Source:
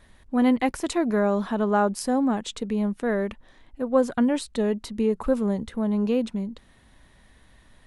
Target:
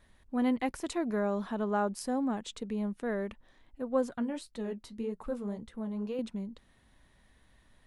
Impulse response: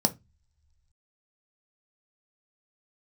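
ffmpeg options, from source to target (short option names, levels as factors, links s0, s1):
-filter_complex "[0:a]asettb=1/sr,asplit=3[s0][s1][s2];[s0]atrim=end=4.094[s3];[s1]atrim=start=4.09:end=6.19,asetpts=PTS-STARTPTS,afade=t=in:d=0.004:c=qsin,afade=t=out:st=2.096:d=0.004:c=qsin,flanger=delay=5.5:depth=5.9:regen=-48:speed=1.9:shape=sinusoidal[s4];[s2]atrim=start=6.186[s5];[s3][s4]acrossfade=d=0.004:c1=hsin:c2=qsin[s6];[s6][s5]acrossfade=d=0.004:c1=qsin:c2=hsin,volume=0.376"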